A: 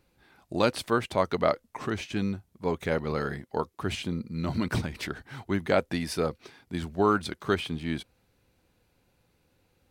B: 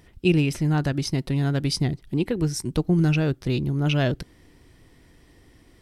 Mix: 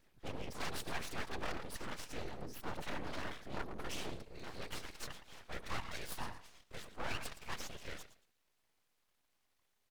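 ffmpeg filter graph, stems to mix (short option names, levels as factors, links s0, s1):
-filter_complex "[0:a]lowshelf=f=370:g=-12,aecho=1:1:4.3:0.41,volume=1,asplit=2[s0][s1];[s1]volume=0.2[s2];[1:a]asoftclip=type=tanh:threshold=0.0891,volume=0.335[s3];[s2]aecho=0:1:114|228|342:1|0.21|0.0441[s4];[s0][s3][s4]amix=inputs=3:normalize=0,asoftclip=type=tanh:threshold=0.0501,afftfilt=real='hypot(re,im)*cos(2*PI*random(0))':imag='hypot(re,im)*sin(2*PI*random(1))':win_size=512:overlap=0.75,aeval=exprs='abs(val(0))':c=same"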